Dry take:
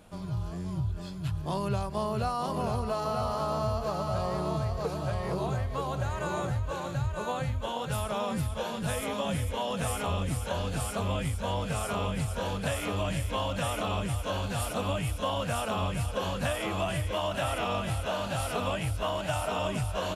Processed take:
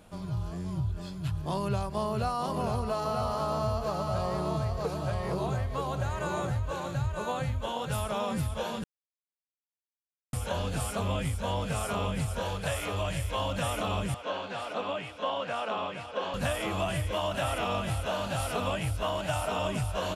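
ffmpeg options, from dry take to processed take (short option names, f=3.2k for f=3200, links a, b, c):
-filter_complex "[0:a]asettb=1/sr,asplit=3[a][b][c];[a]atrim=end=12.424[d];[b]atrim=start=12.42:end=13.39,asetpts=PTS-STARTPTS,afade=t=in:d=0.004:c=qsin,afade=t=out:st=0.966:d=0.004:c=qsin,equalizer=f=240:w=2.9:g=-13.5[e];[c]atrim=start=13.386[f];[d][e]acrossfade=d=0.004:c1=hsin:c2=qsin[g];[g][f]acrossfade=d=0.004:c1=qsin:c2=hsin,asettb=1/sr,asplit=3[h][i][j];[h]atrim=end=14.144[k];[i]atrim=start=14.14:end=16.34,asetpts=PTS-STARTPTS,afade=t=in:d=0.004:c=qsin,afade=t=out:st=2.196:d=0.004:c=qsin,highpass=320,lowpass=3.6k[l];[j]atrim=start=16.336[m];[k][l]acrossfade=d=0.004:c1=hsin:c2=qsin[n];[n][m]acrossfade=d=0.004:c1=qsin:c2=hsin,asplit=3[o][p][q];[o]atrim=end=8.84,asetpts=PTS-STARTPTS,afade=t=out:st=8.836:d=0.004:c=hsin[r];[p]atrim=start=8.84:end=10.33,asetpts=PTS-STARTPTS,volume=0[s];[q]atrim=start=10.33,asetpts=PTS-STARTPTS,afade=t=in:d=0.004:c=hsin[t];[r][s][t]concat=n=3:v=0:a=1"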